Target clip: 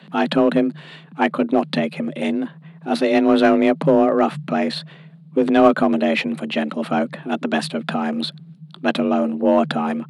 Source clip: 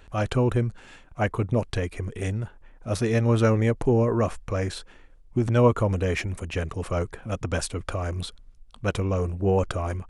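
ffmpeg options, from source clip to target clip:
ffmpeg -i in.wav -filter_complex "[0:a]afreqshift=140,highshelf=frequency=5000:width_type=q:width=3:gain=-7,asplit=2[link_01][link_02];[link_02]aeval=exprs='0.178*(abs(mod(val(0)/0.178+3,4)-2)-1)':channel_layout=same,volume=-11dB[link_03];[link_01][link_03]amix=inputs=2:normalize=0,volume=4dB" out.wav

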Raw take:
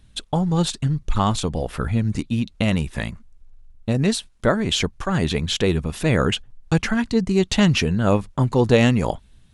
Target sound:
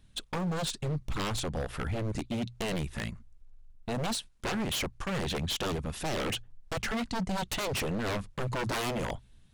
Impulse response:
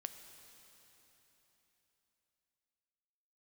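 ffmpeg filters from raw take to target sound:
-af "bandreject=frequency=60:width_type=h:width=6,bandreject=frequency=120:width_type=h:width=6,aeval=exprs='0.1*(abs(mod(val(0)/0.1+3,4)-2)-1)':channel_layout=same,volume=-6.5dB"

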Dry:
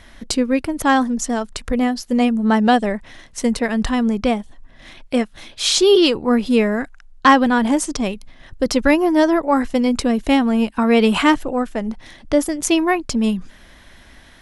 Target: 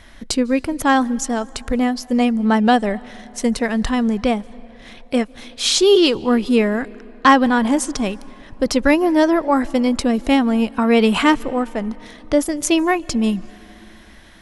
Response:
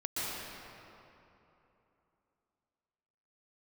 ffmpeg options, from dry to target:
-filter_complex "[0:a]asplit=2[link_01][link_02];[1:a]atrim=start_sample=2205,asetrate=39690,aresample=44100,adelay=15[link_03];[link_02][link_03]afir=irnorm=-1:irlink=0,volume=-28.5dB[link_04];[link_01][link_04]amix=inputs=2:normalize=0"

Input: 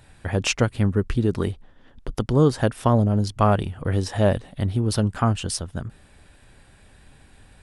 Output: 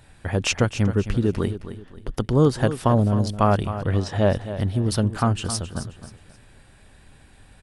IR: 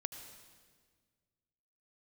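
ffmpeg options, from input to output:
-filter_complex "[0:a]asettb=1/sr,asplit=3[link_01][link_02][link_03];[link_01]atrim=end=3.754[link_04];[link_02]atrim=start=3.75:end=4.3,asetpts=PTS-STARTPTS,afade=type=in:duration=0.004:curve=qsin,afade=type=out:start_time=0.546:duration=0.004:curve=qsin,lowpass=6200[link_05];[link_03]atrim=start=4.296[link_06];[link_04][link_05]acrossfade=duration=0.004:curve1=hsin:curve2=qsin[link_07];[link_07][link_06]acrossfade=duration=0.004:curve1=qsin:curve2=hsin,asplit=2[link_08][link_09];[link_09]aecho=0:1:265|530|795:0.251|0.0829|0.0274[link_10];[link_08][link_10]amix=inputs=2:normalize=0"

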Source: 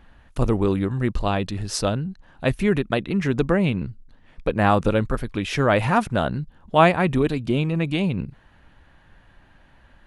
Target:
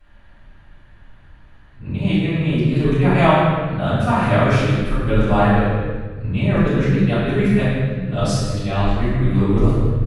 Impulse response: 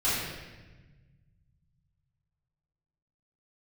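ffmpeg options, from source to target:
-filter_complex "[0:a]areverse,aecho=1:1:156:0.251[link_01];[1:a]atrim=start_sample=2205,asetrate=38367,aresample=44100[link_02];[link_01][link_02]afir=irnorm=-1:irlink=0,volume=-10.5dB"

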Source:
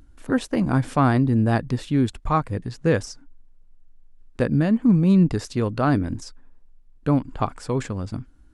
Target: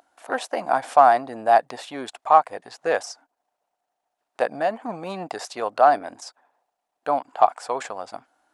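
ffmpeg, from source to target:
ffmpeg -i in.wav -af "acontrast=48,aeval=exprs='0.708*(cos(1*acos(clip(val(0)/0.708,-1,1)))-cos(1*PI/2))+0.00447*(cos(4*acos(clip(val(0)/0.708,-1,1)))-cos(4*PI/2))+0.0224*(cos(6*acos(clip(val(0)/0.708,-1,1)))-cos(6*PI/2))+0.0141*(cos(8*acos(clip(val(0)/0.708,-1,1)))-cos(8*PI/2))':channel_layout=same,highpass=frequency=720:width_type=q:width=4.9,volume=-5dB" out.wav

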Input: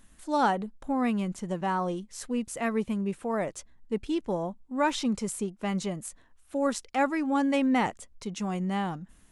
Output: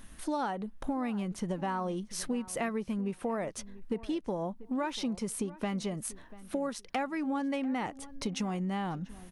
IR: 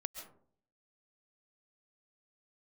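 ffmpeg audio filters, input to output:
-filter_complex "[0:a]acompressor=threshold=-37dB:ratio=12,equalizer=frequency=7400:width_type=o:width=0.23:gain=-9.5,asplit=2[link_01][link_02];[link_02]adelay=690,lowpass=frequency=2000:poles=1,volume=-18dB,asplit=2[link_03][link_04];[link_04]adelay=690,lowpass=frequency=2000:poles=1,volume=0.24[link_05];[link_01][link_03][link_05]amix=inputs=3:normalize=0,volume=7dB"

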